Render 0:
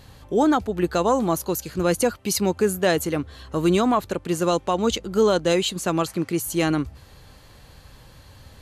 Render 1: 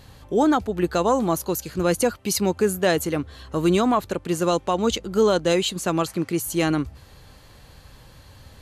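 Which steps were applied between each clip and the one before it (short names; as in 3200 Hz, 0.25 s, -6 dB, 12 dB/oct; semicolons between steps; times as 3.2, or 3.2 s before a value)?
nothing audible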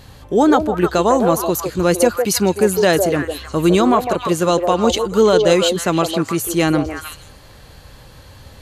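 delay with a stepping band-pass 0.155 s, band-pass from 540 Hz, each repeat 1.4 oct, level -2.5 dB; gain +5.5 dB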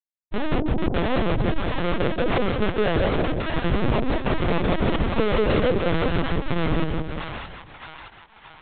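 Schmitt trigger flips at -13 dBFS; split-band echo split 760 Hz, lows 0.182 s, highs 0.623 s, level -3 dB; LPC vocoder at 8 kHz pitch kept; gain -4.5 dB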